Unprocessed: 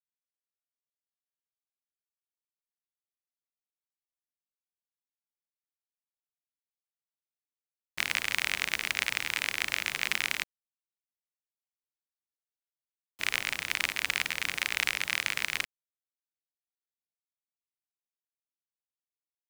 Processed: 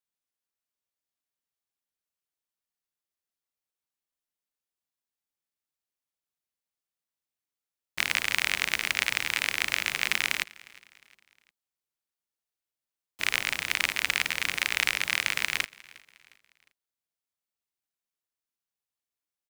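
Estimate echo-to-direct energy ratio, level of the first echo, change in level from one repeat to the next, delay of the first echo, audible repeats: -22.0 dB, -23.0 dB, -7.5 dB, 0.357 s, 2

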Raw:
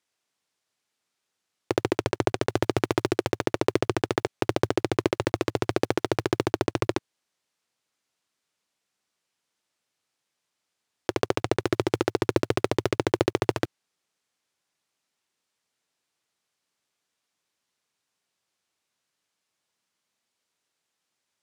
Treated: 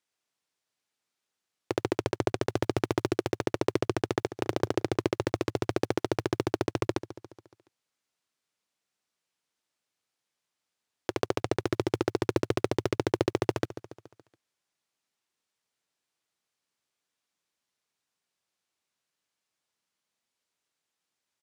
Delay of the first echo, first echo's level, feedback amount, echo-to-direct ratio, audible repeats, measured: 0.141 s, -16.0 dB, 56%, -14.5 dB, 4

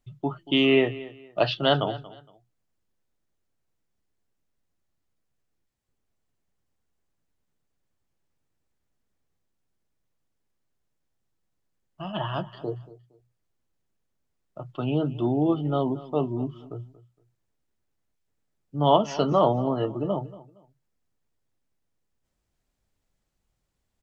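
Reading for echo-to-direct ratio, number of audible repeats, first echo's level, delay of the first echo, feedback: -17.5 dB, 2, -18.0 dB, 0.232 s, 26%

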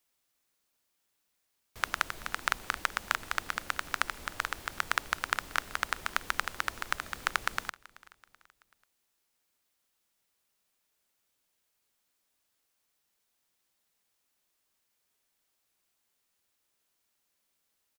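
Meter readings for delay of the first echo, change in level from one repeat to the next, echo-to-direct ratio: 0.381 s, -7.0 dB, -21.0 dB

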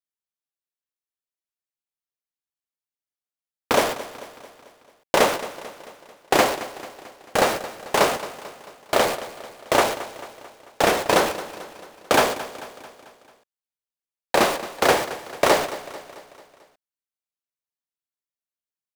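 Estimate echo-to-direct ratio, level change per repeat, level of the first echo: -13.5 dB, -5.5 dB, -15.0 dB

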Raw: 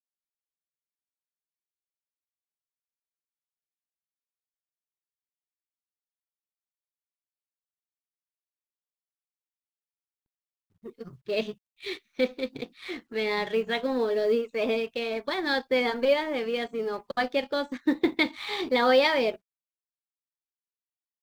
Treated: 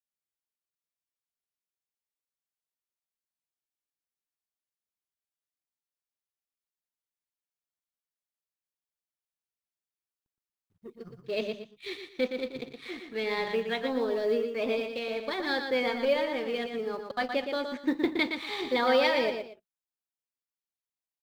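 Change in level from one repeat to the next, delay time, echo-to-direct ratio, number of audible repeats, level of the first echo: -11.5 dB, 0.118 s, -6.0 dB, 2, -6.5 dB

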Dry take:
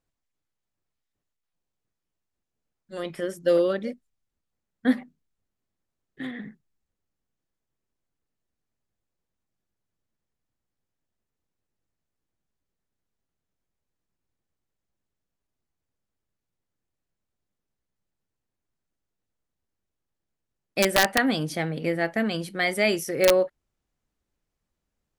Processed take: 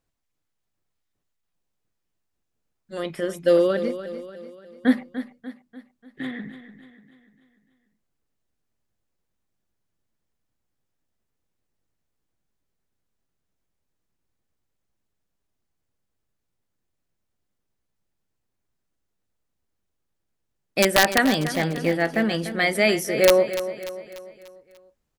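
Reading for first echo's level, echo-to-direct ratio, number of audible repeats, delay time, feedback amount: -12.0 dB, -11.0 dB, 4, 0.294 s, 48%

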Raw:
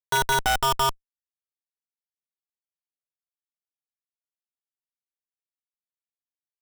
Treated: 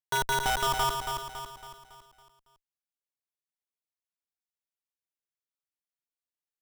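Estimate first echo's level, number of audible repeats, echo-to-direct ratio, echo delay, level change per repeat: -6.0 dB, 5, -5.0 dB, 0.278 s, -6.5 dB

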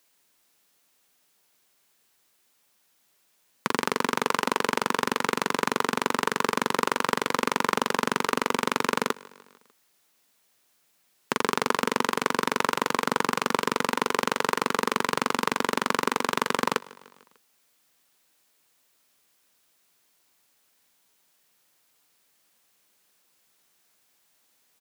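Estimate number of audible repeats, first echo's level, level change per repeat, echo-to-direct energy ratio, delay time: 3, -22.5 dB, -4.5 dB, -21.0 dB, 0.149 s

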